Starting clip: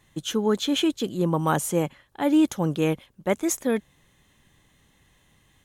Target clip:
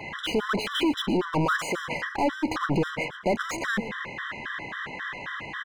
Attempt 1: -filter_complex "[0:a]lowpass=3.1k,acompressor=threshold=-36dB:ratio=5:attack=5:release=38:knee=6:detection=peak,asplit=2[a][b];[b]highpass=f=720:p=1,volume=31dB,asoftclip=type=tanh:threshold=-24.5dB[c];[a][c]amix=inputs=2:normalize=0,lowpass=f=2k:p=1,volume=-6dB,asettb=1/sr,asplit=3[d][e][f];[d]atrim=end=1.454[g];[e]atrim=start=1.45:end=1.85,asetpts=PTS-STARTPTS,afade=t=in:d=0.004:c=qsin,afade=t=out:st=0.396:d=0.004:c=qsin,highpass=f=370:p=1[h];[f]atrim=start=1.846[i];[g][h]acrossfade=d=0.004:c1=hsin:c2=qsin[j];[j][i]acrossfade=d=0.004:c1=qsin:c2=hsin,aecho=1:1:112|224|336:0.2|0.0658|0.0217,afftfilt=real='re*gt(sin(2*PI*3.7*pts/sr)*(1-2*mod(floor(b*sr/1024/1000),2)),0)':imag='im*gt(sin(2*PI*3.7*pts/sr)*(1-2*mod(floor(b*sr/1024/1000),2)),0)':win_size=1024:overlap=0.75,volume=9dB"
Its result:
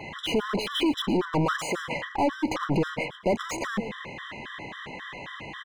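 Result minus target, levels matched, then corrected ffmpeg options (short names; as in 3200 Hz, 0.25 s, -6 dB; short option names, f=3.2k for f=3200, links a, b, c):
2000 Hz band -3.5 dB
-filter_complex "[0:a]lowpass=3.1k,equalizer=f=1.5k:t=o:w=0.69:g=11.5,acompressor=threshold=-36dB:ratio=5:attack=5:release=38:knee=6:detection=peak,asplit=2[a][b];[b]highpass=f=720:p=1,volume=31dB,asoftclip=type=tanh:threshold=-24.5dB[c];[a][c]amix=inputs=2:normalize=0,lowpass=f=2k:p=1,volume=-6dB,asettb=1/sr,asplit=3[d][e][f];[d]atrim=end=1.454[g];[e]atrim=start=1.45:end=1.85,asetpts=PTS-STARTPTS,afade=t=in:d=0.004:c=qsin,afade=t=out:st=0.396:d=0.004:c=qsin,highpass=f=370:p=1[h];[f]atrim=start=1.846[i];[g][h]acrossfade=d=0.004:c1=hsin:c2=qsin[j];[j][i]acrossfade=d=0.004:c1=qsin:c2=hsin,aecho=1:1:112|224|336:0.2|0.0658|0.0217,afftfilt=real='re*gt(sin(2*PI*3.7*pts/sr)*(1-2*mod(floor(b*sr/1024/1000),2)),0)':imag='im*gt(sin(2*PI*3.7*pts/sr)*(1-2*mod(floor(b*sr/1024/1000),2)),0)':win_size=1024:overlap=0.75,volume=9dB"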